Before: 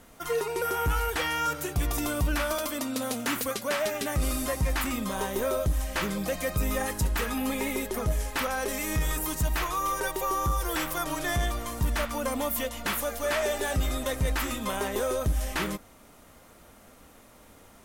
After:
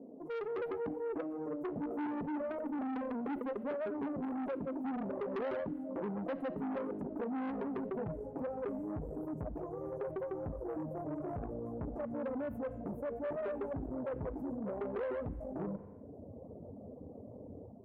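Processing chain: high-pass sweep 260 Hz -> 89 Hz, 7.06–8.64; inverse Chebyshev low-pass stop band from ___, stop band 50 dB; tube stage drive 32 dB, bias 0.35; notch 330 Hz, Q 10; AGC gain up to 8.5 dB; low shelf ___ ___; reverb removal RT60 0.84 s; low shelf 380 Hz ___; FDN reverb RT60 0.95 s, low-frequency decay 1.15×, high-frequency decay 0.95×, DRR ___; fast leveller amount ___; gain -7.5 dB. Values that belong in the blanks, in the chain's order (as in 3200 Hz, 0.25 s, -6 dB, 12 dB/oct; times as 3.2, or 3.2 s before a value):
1400 Hz, 94 Hz, -12 dB, -4 dB, 18.5 dB, 50%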